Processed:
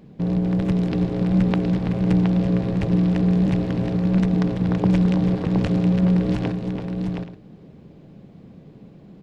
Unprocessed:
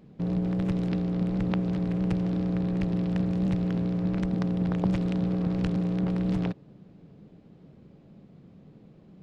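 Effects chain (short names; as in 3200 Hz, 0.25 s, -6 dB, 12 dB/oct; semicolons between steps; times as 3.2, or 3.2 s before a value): notch 1300 Hz, Q 16; on a send: tapped delay 0.332/0.719/0.827 s -9.5/-5.5/-16.5 dB; on the sum: gain +6 dB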